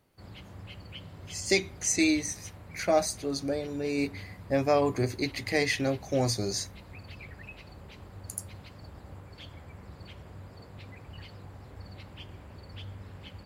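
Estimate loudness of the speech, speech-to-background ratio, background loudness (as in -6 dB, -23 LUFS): -28.5 LUFS, 18.5 dB, -47.0 LUFS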